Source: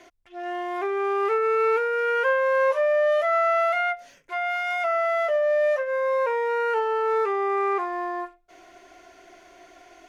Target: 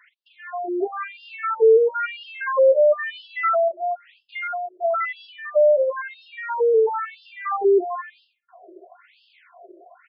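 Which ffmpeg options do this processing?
ffmpeg -i in.wav -filter_complex "[0:a]acrossover=split=320|600|1500[link_01][link_02][link_03][link_04];[link_01]dynaudnorm=framelen=280:gausssize=5:maxgain=16dB[link_05];[link_04]asplit=2[link_06][link_07];[link_07]adelay=48,volume=-11.5dB[link_08];[link_06][link_08]amix=inputs=2:normalize=0[link_09];[link_05][link_02][link_03][link_09]amix=inputs=4:normalize=0,afftfilt=real='re*between(b*sr/1024,450*pow(3800/450,0.5+0.5*sin(2*PI*1*pts/sr))/1.41,450*pow(3800/450,0.5+0.5*sin(2*PI*1*pts/sr))*1.41)':imag='im*between(b*sr/1024,450*pow(3800/450,0.5+0.5*sin(2*PI*1*pts/sr))/1.41,450*pow(3800/450,0.5+0.5*sin(2*PI*1*pts/sr))*1.41)':win_size=1024:overlap=0.75,volume=4dB" out.wav

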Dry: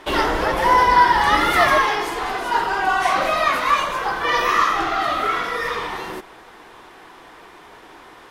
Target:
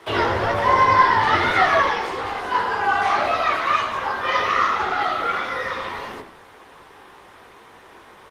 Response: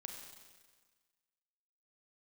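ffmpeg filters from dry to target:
-filter_complex "[0:a]asplit=3[link_01][link_02][link_03];[link_01]afade=type=out:start_time=0.68:duration=0.02[link_04];[link_02]equalizer=frequency=13000:width_type=o:width=0.47:gain=-2.5,afade=type=in:start_time=0.68:duration=0.02,afade=type=out:start_time=2.01:duration=0.02[link_05];[link_03]afade=type=in:start_time=2.01:duration=0.02[link_06];[link_04][link_05][link_06]amix=inputs=3:normalize=0,asettb=1/sr,asplit=3[link_07][link_08][link_09];[link_07]atrim=end=3.454[link_10];[link_08]atrim=start=3.45:end=4.66,asetpts=PTS-STARTPTS,afade=type=in:duration=0.004:curve=qsin,afade=type=out:start_time=1.206:duration=0.004:curve=qsin,bandreject=frequency=50:width_type=h:width=6,bandreject=frequency=100:width_type=h:width=6,bandreject=frequency=150:width_type=h:width=6[link_11];[link_09]atrim=start=4.656[link_12];[link_10][link_11]acrossfade=duration=0.004:curve1=hsin:curve2=qsin[link_13];[link_13][link_12]acrossfade=duration=0.004:curve1=qsin:curve2=hsin,acrossover=split=420|6200[link_14][link_15][link_16];[link_16]acompressor=threshold=-55dB:ratio=16[link_17];[link_14][link_15][link_17]amix=inputs=3:normalize=0,flanger=delay=17:depth=3.9:speed=1.8,afreqshift=49,asplit=4[link_18][link_19][link_20][link_21];[link_19]adelay=91,afreqshift=-100,volume=-11dB[link_22];[link_20]adelay=182,afreqshift=-200,volume=-21.2dB[link_23];[link_21]adelay=273,afreqshift=-300,volume=-31.3dB[link_24];[link_18][link_22][link_23][link_24]amix=inputs=4:normalize=0,volume=2dB" -ar 48000 -c:a libopus -b:a 24k

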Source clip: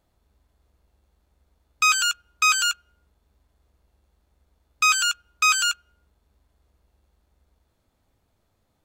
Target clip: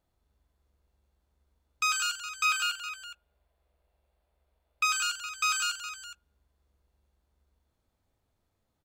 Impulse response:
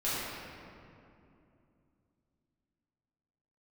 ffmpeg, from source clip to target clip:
-filter_complex "[0:a]asettb=1/sr,asplit=3[link_01][link_02][link_03];[link_01]atrim=end=2.454[link_04];[link_02]atrim=start=2.45:end=4.85,asetpts=PTS-STARTPTS,afade=type=in:duration=0.004:curve=qsin,afade=type=out:start_time=2.396:duration=0.004:curve=qsin,equalizer=frequency=100:width_type=o:width=0.67:gain=-9,equalizer=frequency=250:width_type=o:width=0.67:gain=-7,equalizer=frequency=630:width_type=o:width=0.67:gain=8,equalizer=frequency=2500:width_type=o:width=0.67:gain=4,equalizer=frequency=6300:width_type=o:width=0.67:gain=-7[link_05];[link_03]atrim=start=4.846[link_06];[link_04][link_05]acrossfade=duration=0.004:curve1=hsin:curve2=qsin[link_07];[link_07][link_06]acrossfade=duration=0.004:curve1=qsin:curve2=hsin,aecho=1:1:42|176|415:0.299|0.266|0.2,volume=-8.5dB"

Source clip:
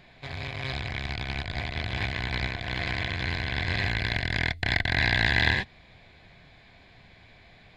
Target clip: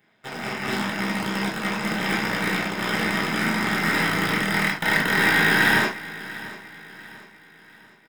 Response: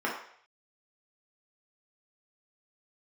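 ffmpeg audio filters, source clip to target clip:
-filter_complex "[0:a]highpass=frequency=69:width=0.5412,highpass=frequency=69:width=1.3066,bass=frequency=250:gain=5,treble=frequency=4000:gain=5,acrusher=bits=8:mode=log:mix=0:aa=0.000001,crystalizer=i=3:c=0,aeval=exprs='0.376*(cos(1*acos(clip(val(0)/0.376,-1,1)))-cos(1*PI/2))+0.0668*(cos(7*acos(clip(val(0)/0.376,-1,1)))-cos(7*PI/2))+0.15*(cos(8*acos(clip(val(0)/0.376,-1,1)))-cos(8*PI/2))':channel_layout=same,aecho=1:1:664|1328|1992|2656:0.141|0.0593|0.0249|0.0105[link_01];[1:a]atrim=start_sample=2205,atrim=end_sample=3528[link_02];[link_01][link_02]afir=irnorm=-1:irlink=0,asetrate=42336,aresample=44100,volume=-8dB"

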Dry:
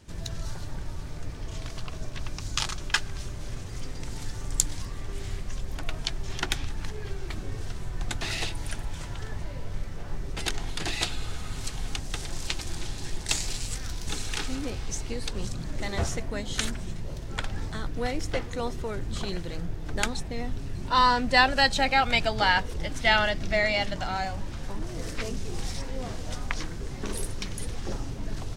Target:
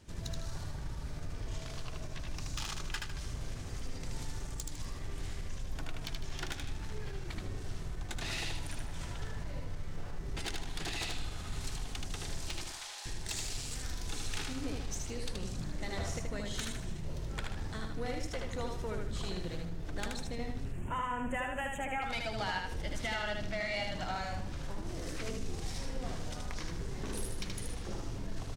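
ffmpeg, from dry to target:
ffmpeg -i in.wav -filter_complex "[0:a]asettb=1/sr,asplit=3[link_01][link_02][link_03];[link_01]atrim=end=12.644[link_04];[link_02]atrim=start=12.64:end=13.06,asetpts=PTS-STARTPTS,afade=type=in:duration=0.004:curve=qsin,afade=type=out:start_time=0.416:duration=0.004:curve=qsin,highpass=frequency=660:width=0.5412,highpass=frequency=660:width=1.3066[link_05];[link_03]atrim=start=13.056[link_06];[link_04][link_05]acrossfade=duration=0.004:curve1=hsin:curve2=qsin[link_07];[link_07][link_06]acrossfade=duration=0.004:curve1=qsin:curve2=hsin,acompressor=threshold=-27dB:ratio=6,asoftclip=type=tanh:threshold=-25dB,asettb=1/sr,asplit=3[link_08][link_09][link_10];[link_08]atrim=end=20.644[link_11];[link_09]atrim=start=20.64:end=22.02,asetpts=PTS-STARTPTS,afade=type=in:duration=0.004:curve=qsin,afade=type=out:start_time=1.376:duration=0.004:curve=qsin,asuperstop=centerf=4600:order=8:qfactor=1.2[link_12];[link_10]atrim=start=22.016[link_13];[link_11][link_12]acrossfade=duration=0.004:curve1=hsin:curve2=qsin[link_14];[link_14][link_13]acrossfade=duration=0.004:curve1=qsin:curve2=hsin,aecho=1:1:77|154|231|308|385:0.668|0.234|0.0819|0.0287|0.01,volume=-4.5dB" out.wav

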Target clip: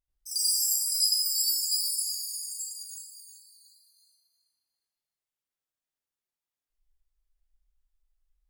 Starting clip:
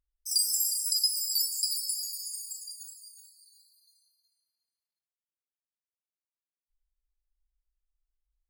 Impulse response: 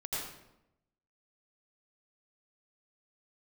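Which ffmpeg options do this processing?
-filter_complex "[1:a]atrim=start_sample=2205,afade=type=out:start_time=0.26:duration=0.01,atrim=end_sample=11907,asetrate=42336,aresample=44100[link_01];[0:a][link_01]afir=irnorm=-1:irlink=0"

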